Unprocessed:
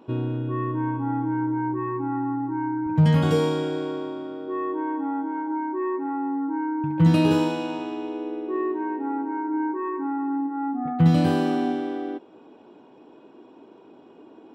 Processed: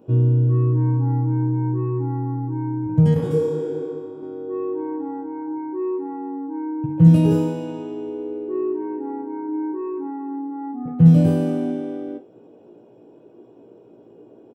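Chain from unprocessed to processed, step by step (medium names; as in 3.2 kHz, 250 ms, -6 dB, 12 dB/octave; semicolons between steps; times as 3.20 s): graphic EQ 125/250/500/1000/2000/4000 Hz +9/-5/+6/-10/-7/-11 dB; early reflections 17 ms -4 dB, 49 ms -12 dB; 3.14–4.23 s: detune thickener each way 55 cents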